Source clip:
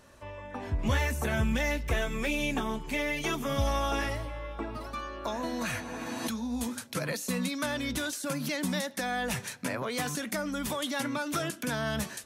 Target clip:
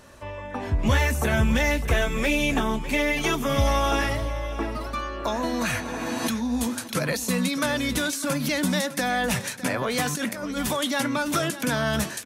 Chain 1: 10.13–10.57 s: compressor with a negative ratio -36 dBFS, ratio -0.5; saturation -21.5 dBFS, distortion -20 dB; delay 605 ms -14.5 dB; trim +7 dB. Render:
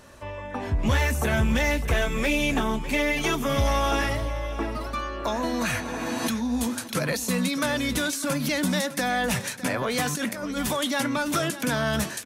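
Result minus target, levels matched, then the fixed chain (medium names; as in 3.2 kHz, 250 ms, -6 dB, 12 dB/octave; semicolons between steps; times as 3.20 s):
saturation: distortion +12 dB
10.13–10.57 s: compressor with a negative ratio -36 dBFS, ratio -0.5; saturation -14 dBFS, distortion -33 dB; delay 605 ms -14.5 dB; trim +7 dB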